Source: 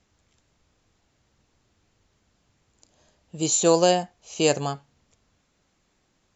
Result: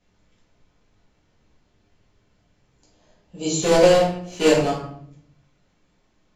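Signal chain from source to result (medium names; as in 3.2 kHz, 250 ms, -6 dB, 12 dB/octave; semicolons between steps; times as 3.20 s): 3.62–4.71 s: block-companded coder 3-bit; distance through air 74 m; simulated room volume 120 m³, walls mixed, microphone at 1.9 m; trim -4.5 dB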